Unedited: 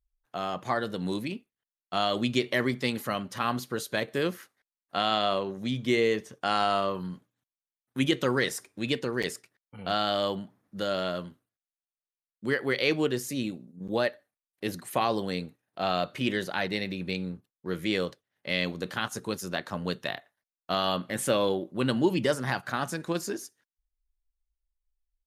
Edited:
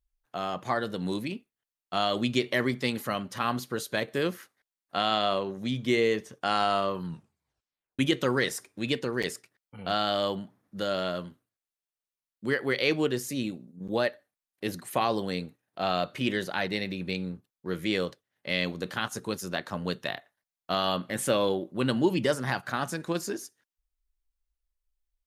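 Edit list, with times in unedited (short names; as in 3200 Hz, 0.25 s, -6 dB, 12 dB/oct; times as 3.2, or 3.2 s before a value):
7.04 tape stop 0.95 s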